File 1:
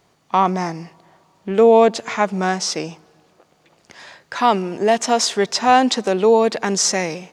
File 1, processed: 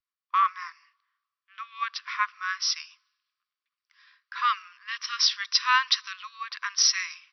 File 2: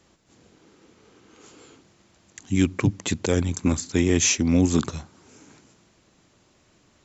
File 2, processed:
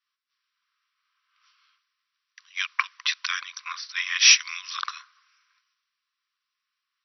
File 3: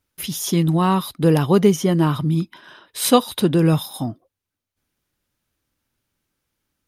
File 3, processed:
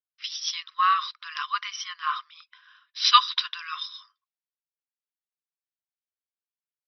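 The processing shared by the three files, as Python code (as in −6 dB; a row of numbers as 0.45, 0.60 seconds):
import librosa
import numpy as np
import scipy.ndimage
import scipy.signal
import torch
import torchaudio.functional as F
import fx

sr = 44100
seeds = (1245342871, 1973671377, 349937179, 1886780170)

y = fx.brickwall_bandpass(x, sr, low_hz=1000.0, high_hz=5900.0)
y = fx.band_widen(y, sr, depth_pct=70)
y = y * 10.0 ** (-30 / 20.0) / np.sqrt(np.mean(np.square(y)))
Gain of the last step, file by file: −4.5, +5.0, +1.0 decibels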